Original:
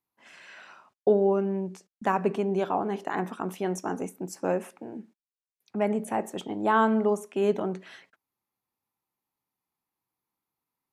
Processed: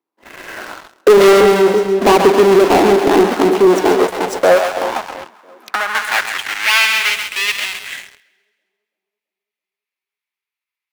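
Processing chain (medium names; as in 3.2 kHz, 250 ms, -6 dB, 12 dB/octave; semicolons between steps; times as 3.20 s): square wave that keeps the level; treble shelf 4.8 kHz -10 dB; in parallel at +2 dB: compression 4:1, threshold -37 dBFS, peak gain reduction 18 dB; 1.17–2.16 s: on the sum: doubling 24 ms -5.5 dB; 7.09–7.75 s: peaking EQ 1.4 kHz -7 dB 0.89 oct; on a send: two-band feedback delay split 570 Hz, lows 333 ms, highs 134 ms, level -8 dB; on the sum: high-pass sweep 330 Hz -> 2.3 kHz, 3.46–6.87 s; waveshaping leveller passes 3; 4.96–5.95 s: three bands compressed up and down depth 100%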